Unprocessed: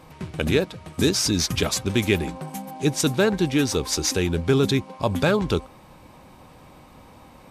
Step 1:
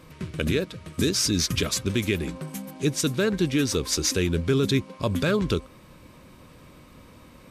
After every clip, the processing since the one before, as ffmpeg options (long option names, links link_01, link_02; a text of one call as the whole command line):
ffmpeg -i in.wav -af "equalizer=frequency=800:width_type=o:width=0.42:gain=-14.5,alimiter=limit=-12.5dB:level=0:latency=1:release=181" out.wav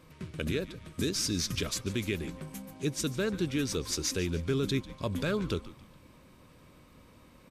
ffmpeg -i in.wav -filter_complex "[0:a]asplit=5[link_01][link_02][link_03][link_04][link_05];[link_02]adelay=145,afreqshift=-96,volume=-17dB[link_06];[link_03]adelay=290,afreqshift=-192,volume=-23.9dB[link_07];[link_04]adelay=435,afreqshift=-288,volume=-30.9dB[link_08];[link_05]adelay=580,afreqshift=-384,volume=-37.8dB[link_09];[link_01][link_06][link_07][link_08][link_09]amix=inputs=5:normalize=0,volume=-7.5dB" out.wav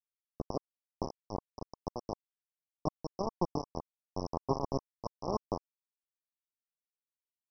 ffmpeg -i in.wav -af "aresample=11025,acrusher=bits=3:mix=0:aa=0.000001,aresample=44100,asuperstop=centerf=2500:order=20:qfactor=0.57" out.wav